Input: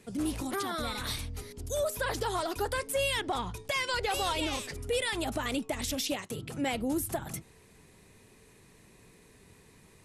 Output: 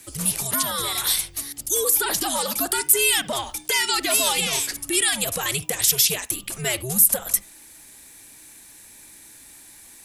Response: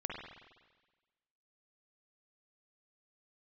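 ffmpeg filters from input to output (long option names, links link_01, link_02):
-filter_complex "[0:a]aemphasis=mode=production:type=riaa,afreqshift=-130,asplit=2[link_01][link_02];[1:a]atrim=start_sample=2205,atrim=end_sample=3528[link_03];[link_02][link_03]afir=irnorm=-1:irlink=0,volume=-12dB[link_04];[link_01][link_04]amix=inputs=2:normalize=0,volume=4dB"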